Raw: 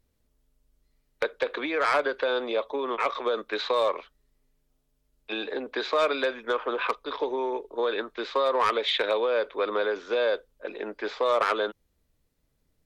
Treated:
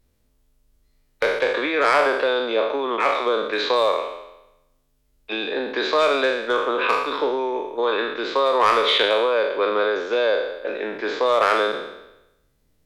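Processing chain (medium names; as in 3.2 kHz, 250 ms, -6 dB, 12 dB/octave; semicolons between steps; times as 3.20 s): spectral sustain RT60 0.93 s; trim +4 dB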